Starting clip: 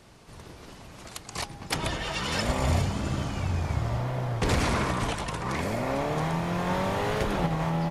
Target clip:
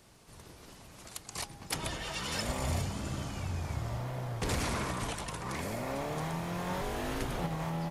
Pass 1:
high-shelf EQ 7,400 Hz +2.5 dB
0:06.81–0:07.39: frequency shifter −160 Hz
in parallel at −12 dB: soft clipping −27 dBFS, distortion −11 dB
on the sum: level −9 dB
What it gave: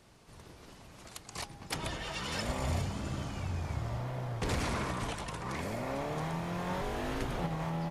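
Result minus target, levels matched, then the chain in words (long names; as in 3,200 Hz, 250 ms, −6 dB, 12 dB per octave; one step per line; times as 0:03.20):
8,000 Hz band −4.0 dB
high-shelf EQ 7,400 Hz +11.5 dB
0:06.81–0:07.39: frequency shifter −160 Hz
in parallel at −12 dB: soft clipping −27 dBFS, distortion −10 dB
on the sum: level −9 dB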